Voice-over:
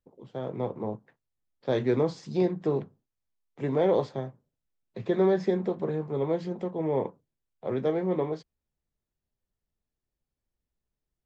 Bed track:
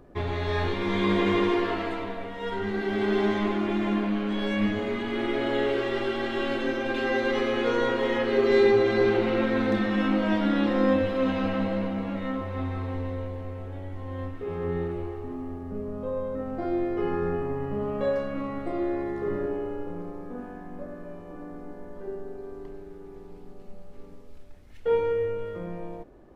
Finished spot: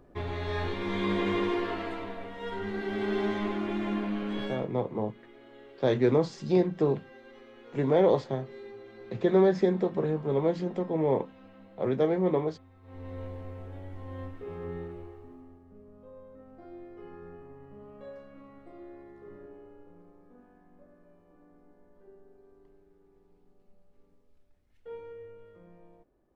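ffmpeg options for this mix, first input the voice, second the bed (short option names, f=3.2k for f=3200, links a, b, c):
-filter_complex "[0:a]adelay=4150,volume=1.5dB[a];[1:a]volume=15.5dB,afade=t=out:st=4.41:d=0.26:silence=0.0891251,afade=t=in:st=12.82:d=0.43:silence=0.0944061,afade=t=out:st=14.16:d=1.47:silence=0.211349[b];[a][b]amix=inputs=2:normalize=0"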